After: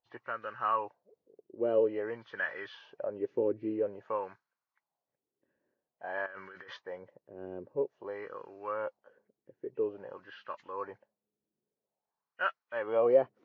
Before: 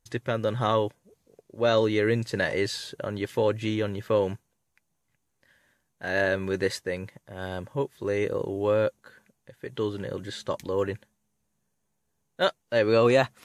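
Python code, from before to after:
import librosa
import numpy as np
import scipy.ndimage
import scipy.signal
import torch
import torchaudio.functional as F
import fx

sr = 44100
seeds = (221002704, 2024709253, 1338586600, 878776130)

y = fx.freq_compress(x, sr, knee_hz=1800.0, ratio=1.5)
y = fx.over_compress(y, sr, threshold_db=-33.0, ratio=-1.0, at=(6.26, 6.77))
y = fx.wah_lfo(y, sr, hz=0.5, low_hz=350.0, high_hz=1400.0, q=2.9)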